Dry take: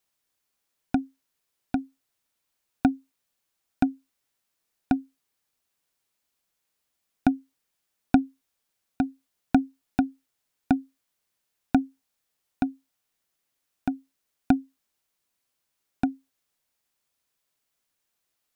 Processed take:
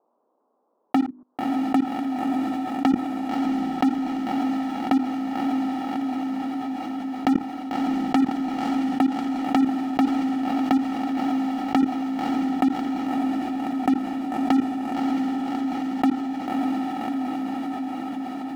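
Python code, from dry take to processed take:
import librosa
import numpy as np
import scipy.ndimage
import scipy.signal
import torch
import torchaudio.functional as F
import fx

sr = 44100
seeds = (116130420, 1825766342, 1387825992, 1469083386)

y = fx.tracing_dist(x, sr, depth_ms=0.089)
y = scipy.signal.sosfilt(scipy.signal.ellip(3, 1.0, 40, [230.0, 1100.0], 'bandpass', fs=sr, output='sos'), y)
y = fx.hum_notches(y, sr, base_hz=50, count=8)
y = fx.env_lowpass(y, sr, base_hz=690.0, full_db=-21.5)
y = fx.low_shelf(y, sr, hz=330.0, db=-9.5)
y = fx.leveller(y, sr, passes=5)
y = fx.level_steps(y, sr, step_db=23)
y = fx.echo_diffused(y, sr, ms=601, feedback_pct=44, wet_db=-14.0)
y = fx.env_flatten(y, sr, amount_pct=70)
y = y * 10.0 ** (4.5 / 20.0)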